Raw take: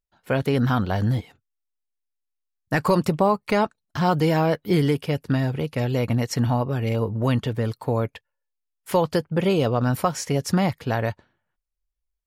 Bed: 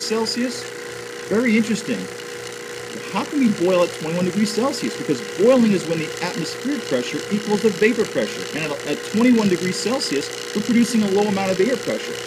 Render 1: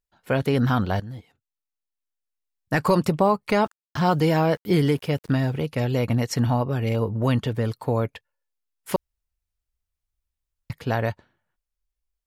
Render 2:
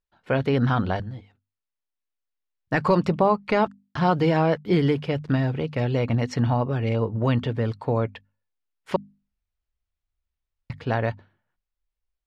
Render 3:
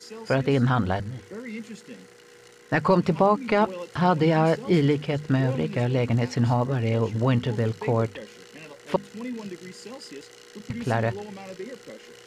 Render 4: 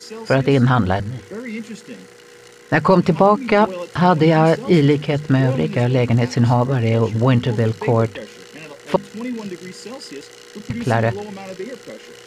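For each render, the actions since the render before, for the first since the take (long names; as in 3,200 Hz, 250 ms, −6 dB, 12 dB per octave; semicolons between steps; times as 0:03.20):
0:01.00–0:02.80: fade in, from −17 dB; 0:03.56–0:05.60: centre clipping without the shift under −48.5 dBFS; 0:08.96–0:10.70: fill with room tone
low-pass filter 3,900 Hz 12 dB per octave; mains-hum notches 50/100/150/200/250 Hz
mix in bed −19 dB
level +7 dB; brickwall limiter −3 dBFS, peak gain reduction 1 dB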